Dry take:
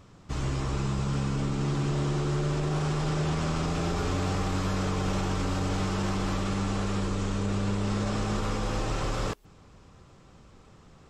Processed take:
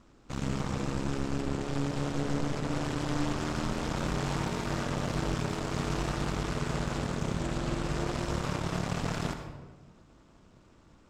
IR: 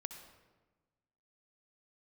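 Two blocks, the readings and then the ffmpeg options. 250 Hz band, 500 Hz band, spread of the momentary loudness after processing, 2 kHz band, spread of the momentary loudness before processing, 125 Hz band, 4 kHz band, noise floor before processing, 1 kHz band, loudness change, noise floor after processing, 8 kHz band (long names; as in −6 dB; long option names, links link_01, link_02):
−2.5 dB, −2.0 dB, 2 LU, −1.0 dB, 2 LU, −5.0 dB, −2.0 dB, −54 dBFS, −2.5 dB, −3.5 dB, −59 dBFS, −2.0 dB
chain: -filter_complex "[0:a]aeval=exprs='0.141*(cos(1*acos(clip(val(0)/0.141,-1,1)))-cos(1*PI/2))+0.0355*(cos(6*acos(clip(val(0)/0.141,-1,1)))-cos(6*PI/2))':channel_layout=same,aeval=exprs='val(0)*sin(2*PI*140*n/s)':channel_layout=same[link_01];[1:a]atrim=start_sample=2205[link_02];[link_01][link_02]afir=irnorm=-1:irlink=0"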